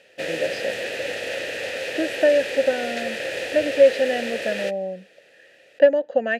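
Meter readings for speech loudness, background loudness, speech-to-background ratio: -22.0 LUFS, -28.0 LUFS, 6.0 dB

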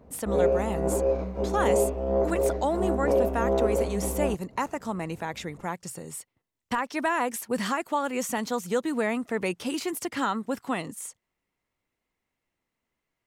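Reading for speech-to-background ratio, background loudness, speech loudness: -3.5 dB, -27.0 LUFS, -30.5 LUFS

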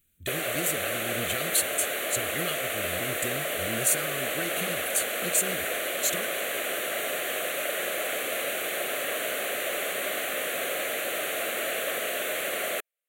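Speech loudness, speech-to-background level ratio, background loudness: -30.5 LUFS, -1.5 dB, -29.0 LUFS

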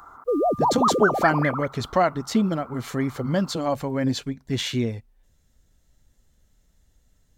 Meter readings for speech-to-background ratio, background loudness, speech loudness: -1.5 dB, -23.5 LUFS, -25.0 LUFS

